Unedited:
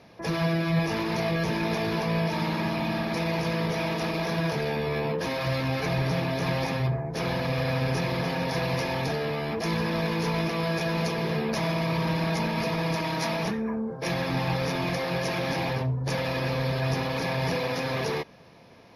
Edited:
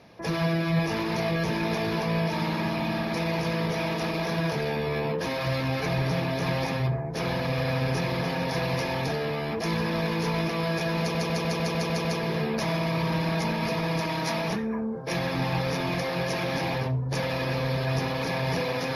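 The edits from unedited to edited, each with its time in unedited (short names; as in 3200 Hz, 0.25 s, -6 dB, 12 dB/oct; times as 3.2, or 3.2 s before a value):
11 stutter 0.15 s, 8 plays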